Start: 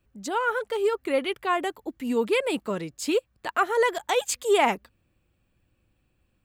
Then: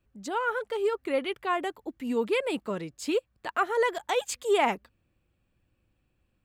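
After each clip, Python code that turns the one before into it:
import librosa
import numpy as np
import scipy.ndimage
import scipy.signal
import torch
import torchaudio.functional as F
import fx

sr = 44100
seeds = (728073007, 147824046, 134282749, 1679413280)

y = fx.high_shelf(x, sr, hz=6400.0, db=-5.5)
y = F.gain(torch.from_numpy(y), -3.0).numpy()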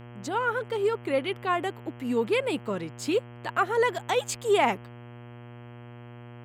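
y = fx.dmg_buzz(x, sr, base_hz=120.0, harmonics=27, level_db=-46.0, tilt_db=-6, odd_only=False)
y = F.gain(torch.from_numpy(y), 1.5).numpy()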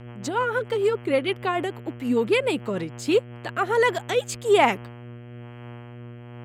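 y = fx.rotary_switch(x, sr, hz=6.7, then_hz=1.1, switch_at_s=2.81)
y = F.gain(torch.from_numpy(y), 6.0).numpy()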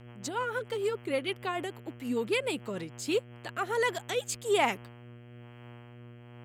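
y = fx.high_shelf(x, sr, hz=3400.0, db=8.5)
y = F.gain(torch.from_numpy(y), -9.0).numpy()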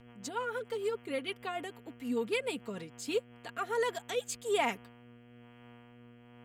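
y = x + 0.47 * np.pad(x, (int(4.3 * sr / 1000.0), 0))[:len(x)]
y = F.gain(torch.from_numpy(y), -5.0).numpy()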